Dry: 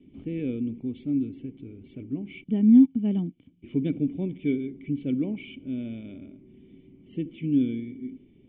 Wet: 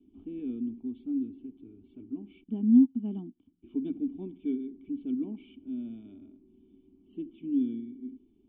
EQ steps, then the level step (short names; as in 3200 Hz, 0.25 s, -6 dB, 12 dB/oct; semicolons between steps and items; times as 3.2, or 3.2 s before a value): dynamic EQ 240 Hz, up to +4 dB, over -40 dBFS, Q 5.5; air absorption 140 m; fixed phaser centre 530 Hz, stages 6; -5.5 dB